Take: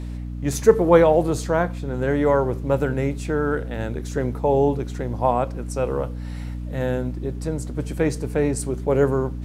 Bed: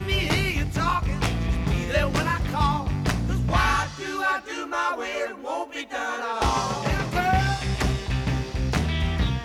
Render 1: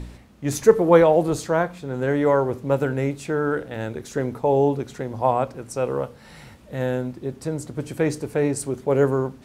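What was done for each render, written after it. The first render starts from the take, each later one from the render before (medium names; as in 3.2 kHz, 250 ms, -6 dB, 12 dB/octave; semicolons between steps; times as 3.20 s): de-hum 60 Hz, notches 5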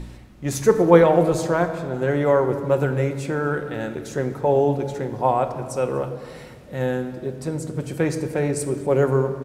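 delay 242 ms -24 dB; simulated room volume 3400 m³, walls mixed, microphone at 0.98 m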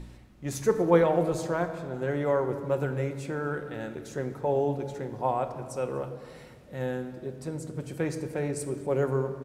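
trim -8 dB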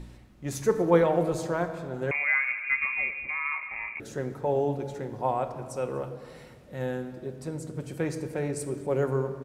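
2.11–4.00 s: frequency inversion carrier 2.6 kHz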